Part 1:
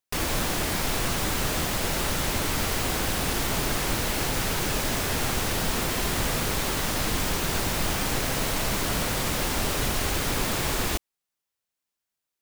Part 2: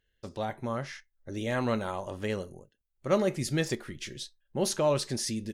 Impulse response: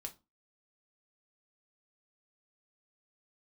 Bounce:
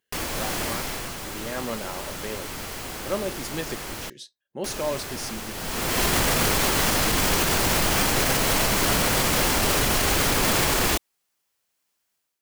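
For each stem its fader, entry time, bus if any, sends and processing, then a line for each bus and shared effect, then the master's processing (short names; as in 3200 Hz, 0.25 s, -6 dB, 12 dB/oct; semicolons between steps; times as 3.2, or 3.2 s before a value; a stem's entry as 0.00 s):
+0.5 dB, 0.00 s, muted 4.1–4.64, no send, low shelf 180 Hz -4.5 dB; notch 3700 Hz, Q 29; AGC gain up to 10 dB; auto duck -17 dB, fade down 1.15 s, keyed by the second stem
-2.0 dB, 0.00 s, no send, HPF 200 Hz 12 dB/oct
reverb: off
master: limiter -12 dBFS, peak gain reduction 7 dB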